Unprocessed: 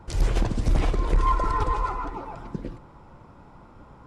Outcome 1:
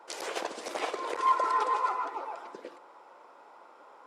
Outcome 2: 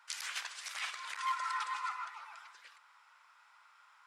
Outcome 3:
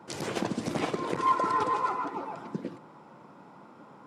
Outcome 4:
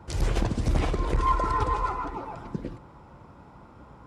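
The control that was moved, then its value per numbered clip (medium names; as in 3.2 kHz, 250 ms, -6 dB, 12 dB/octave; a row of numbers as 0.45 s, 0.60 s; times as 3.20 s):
high-pass, cutoff frequency: 440 Hz, 1.4 kHz, 170 Hz, 42 Hz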